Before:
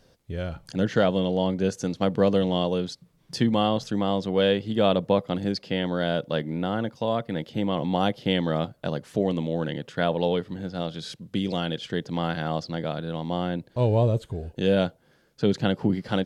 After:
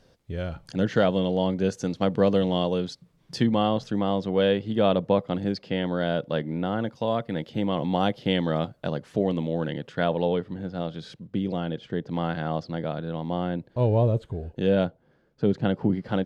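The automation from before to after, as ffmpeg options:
-af "asetnsamples=n=441:p=0,asendcmd='3.47 lowpass f 2900;6.81 lowpass f 5500;8.88 lowpass f 3600;10.22 lowpass f 1900;11.27 lowpass f 1000;12.07 lowpass f 2000;14.85 lowpass f 1000;15.65 lowpass f 1600',lowpass=f=6.1k:p=1"

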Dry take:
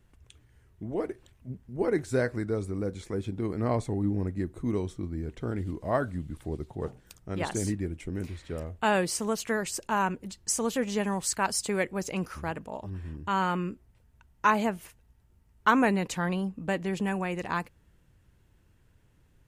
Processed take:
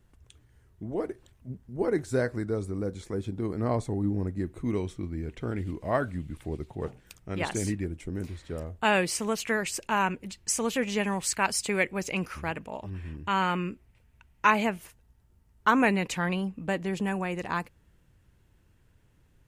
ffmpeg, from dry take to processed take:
-af "asetnsamples=n=441:p=0,asendcmd='4.44 equalizer g 6;7.84 equalizer g -3;8.85 equalizer g 8.5;14.78 equalizer g -1.5;15.8 equalizer g 7;16.68 equalizer g 0.5',equalizer=f=2.4k:t=o:w=0.78:g=-3"

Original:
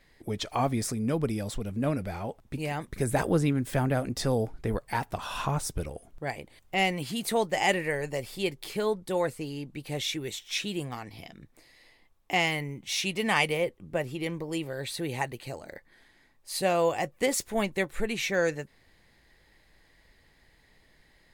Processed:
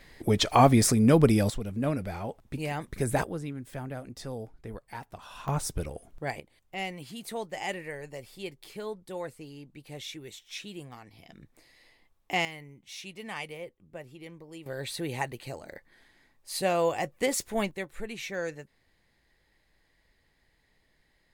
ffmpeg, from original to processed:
-af "asetnsamples=n=441:p=0,asendcmd='1.5 volume volume -0.5dB;3.24 volume volume -11dB;5.48 volume volume 0dB;6.4 volume volume -9dB;11.29 volume volume -2dB;12.45 volume volume -13dB;14.66 volume volume -1dB;17.71 volume volume -7.5dB',volume=8.5dB"

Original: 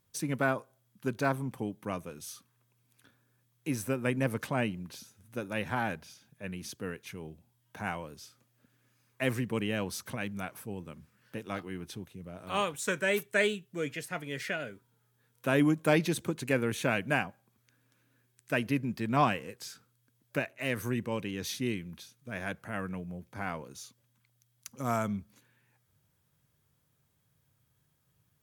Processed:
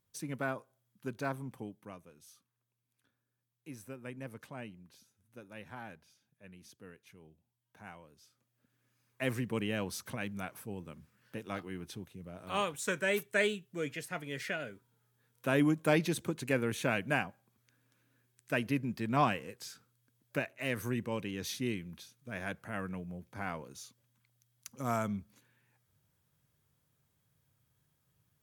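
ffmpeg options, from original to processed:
-af "volume=5dB,afade=t=out:st=1.55:d=0.43:silence=0.421697,afade=t=in:st=8.15:d=1.33:silence=0.251189"

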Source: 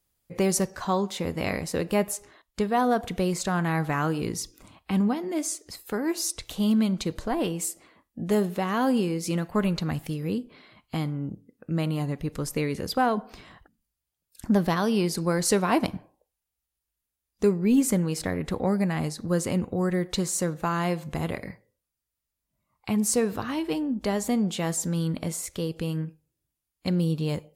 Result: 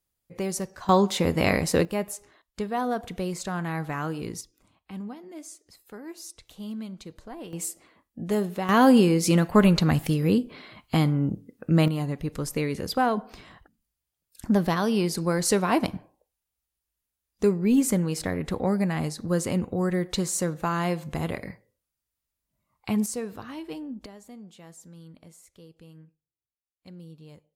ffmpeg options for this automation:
-af "asetnsamples=n=441:p=0,asendcmd='0.89 volume volume 6dB;1.85 volume volume -4.5dB;4.41 volume volume -13dB;7.53 volume volume -2dB;8.69 volume volume 7dB;11.88 volume volume 0dB;23.06 volume volume -8.5dB;24.06 volume volume -20dB',volume=-6dB"

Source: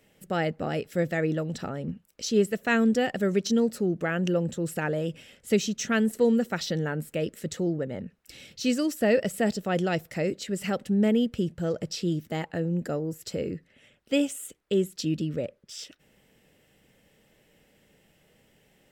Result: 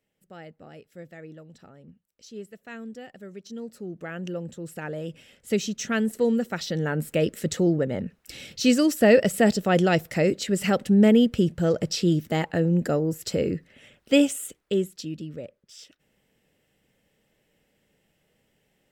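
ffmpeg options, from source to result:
-af "volume=6dB,afade=t=in:st=3.43:d=0.75:silence=0.334965,afade=t=in:st=4.68:d=1:silence=0.473151,afade=t=in:st=6.69:d=0.42:silence=0.473151,afade=t=out:st=14.22:d=0.87:silence=0.237137"

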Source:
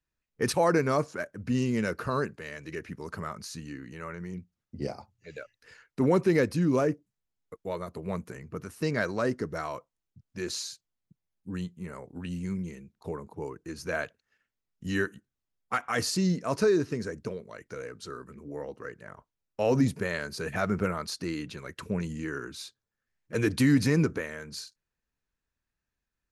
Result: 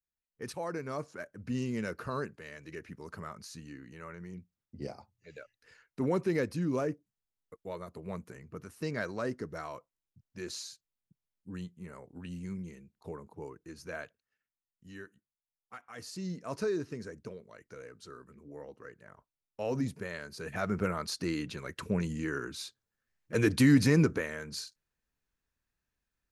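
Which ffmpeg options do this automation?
-af "volume=12dB,afade=t=in:st=0.8:d=0.58:silence=0.446684,afade=t=out:st=13.37:d=1.52:silence=0.251189,afade=t=in:st=15.95:d=0.59:silence=0.316228,afade=t=in:st=20.31:d=0.95:silence=0.375837"

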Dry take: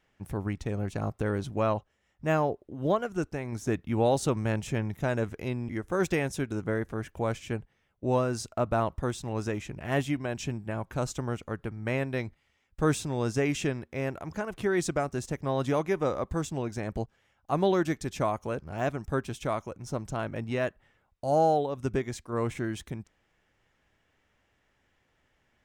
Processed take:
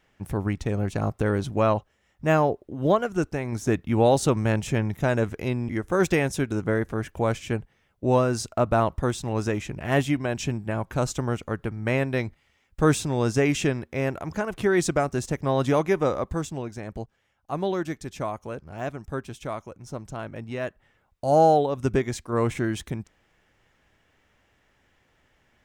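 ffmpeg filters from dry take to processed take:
-af "volume=13.5dB,afade=t=out:st=15.93:d=0.82:silence=0.421697,afade=t=in:st=20.57:d=0.85:silence=0.398107"

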